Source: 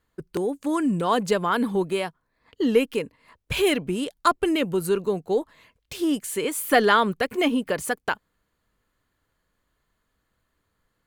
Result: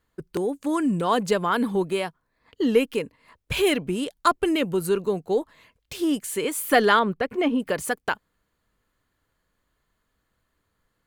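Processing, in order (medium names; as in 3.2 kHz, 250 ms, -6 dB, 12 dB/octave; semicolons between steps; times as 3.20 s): 6.99–7.60 s: low-pass 1.7 kHz 6 dB/octave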